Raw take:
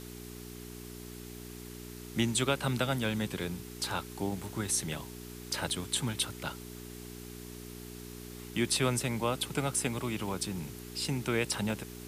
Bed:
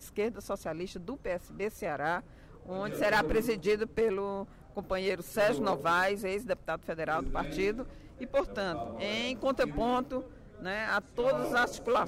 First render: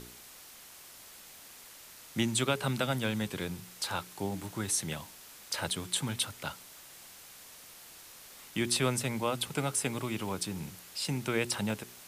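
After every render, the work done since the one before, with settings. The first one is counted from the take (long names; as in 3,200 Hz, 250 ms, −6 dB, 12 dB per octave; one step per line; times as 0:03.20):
hum removal 60 Hz, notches 7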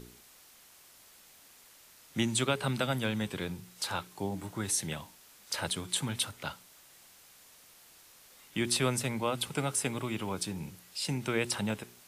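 noise reduction from a noise print 6 dB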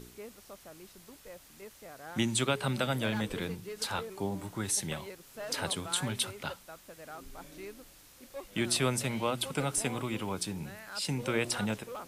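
mix in bed −14.5 dB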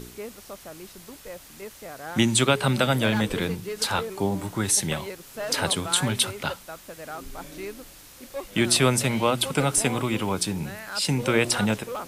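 level +9 dB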